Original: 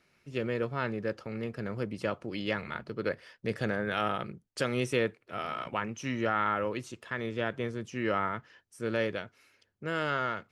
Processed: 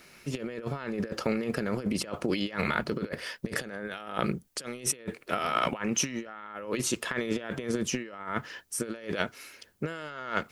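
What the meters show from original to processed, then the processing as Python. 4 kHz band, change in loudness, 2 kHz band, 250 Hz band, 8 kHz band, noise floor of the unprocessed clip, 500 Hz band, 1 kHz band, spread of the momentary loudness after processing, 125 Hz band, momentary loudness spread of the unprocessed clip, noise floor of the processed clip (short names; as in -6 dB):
+4.5 dB, +1.0 dB, 0.0 dB, +3.0 dB, +17.0 dB, -72 dBFS, -1.5 dB, -1.0 dB, 9 LU, 0.0 dB, 9 LU, -57 dBFS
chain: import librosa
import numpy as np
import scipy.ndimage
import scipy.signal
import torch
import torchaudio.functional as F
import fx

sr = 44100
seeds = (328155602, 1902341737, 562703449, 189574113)

y = fx.high_shelf(x, sr, hz=6800.0, db=11.0)
y = fx.over_compress(y, sr, threshold_db=-38.0, ratio=-0.5)
y = fx.peak_eq(y, sr, hz=110.0, db=-14.0, octaves=0.33)
y = F.gain(torch.from_numpy(y), 7.5).numpy()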